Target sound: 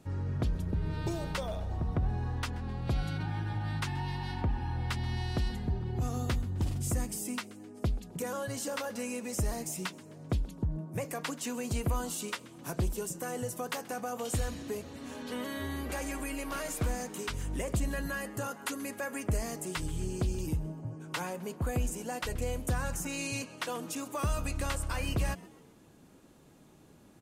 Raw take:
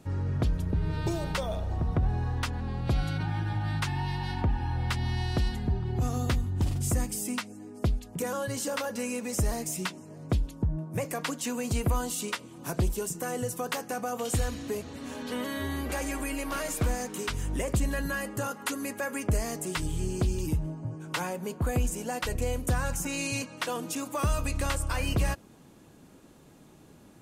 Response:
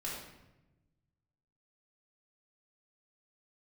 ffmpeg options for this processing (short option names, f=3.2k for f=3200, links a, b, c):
-filter_complex "[0:a]asplit=4[a][b][c][d];[b]adelay=130,afreqshift=130,volume=-21.5dB[e];[c]adelay=260,afreqshift=260,volume=-28.6dB[f];[d]adelay=390,afreqshift=390,volume=-35.8dB[g];[a][e][f][g]amix=inputs=4:normalize=0,volume=-4dB"